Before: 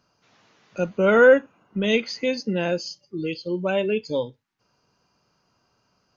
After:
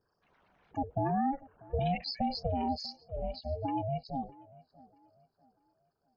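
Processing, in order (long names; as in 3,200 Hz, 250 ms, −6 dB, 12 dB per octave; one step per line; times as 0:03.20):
spectral envelope exaggerated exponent 3
source passing by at 0:02.00, 7 m/s, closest 6.5 metres
downward compressor 10 to 1, threshold −25 dBFS, peak gain reduction 13.5 dB
ring modulation 270 Hz
on a send: tape delay 640 ms, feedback 36%, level −20.5 dB, low-pass 2,700 Hz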